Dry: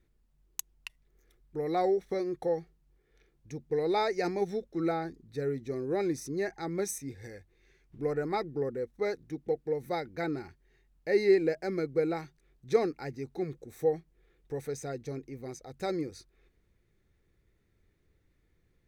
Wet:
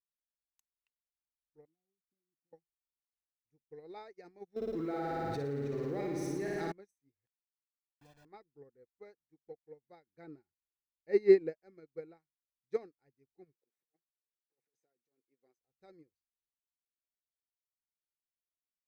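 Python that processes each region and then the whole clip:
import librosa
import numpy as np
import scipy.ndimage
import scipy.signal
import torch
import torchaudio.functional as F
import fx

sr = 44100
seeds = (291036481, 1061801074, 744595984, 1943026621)

y = fx.chain(x, sr, fx.formant_cascade(vowel='i'),
    fx.comb(ms=1.1, depth=0.81), at=(1.65, 2.53))
y = fx.chain(y, sr, fx.law_mismatch(coded='mu'),
    fx.room_flutter(wall_m=9.7, rt60_s=1.5),
    fx.env_flatten(amount_pct=100), at=(4.56, 6.72))
y = fx.chain(y, sr, fx.quant_dither(seeds[0], bits=6, dither='none'),
    fx.comb(ms=1.2, depth=0.88),
    fx.pre_swell(db_per_s=150.0), at=(7.26, 8.25))
y = fx.chain(y, sr, fx.peak_eq(hz=240.0, db=4.5, octaves=3.0),
    fx.notch(hz=720.0, q=24.0), at=(10.06, 11.57))
y = fx.chain(y, sr, fx.over_compress(threshold_db=-39.0, ratio=-0.5),
    fx.highpass(hz=330.0, slope=12), at=(13.53, 15.58))
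y = fx.peak_eq(y, sr, hz=11000.0, db=-6.5, octaves=2.0)
y = fx.upward_expand(y, sr, threshold_db=-45.0, expansion=2.5)
y = F.gain(torch.from_numpy(y), -1.5).numpy()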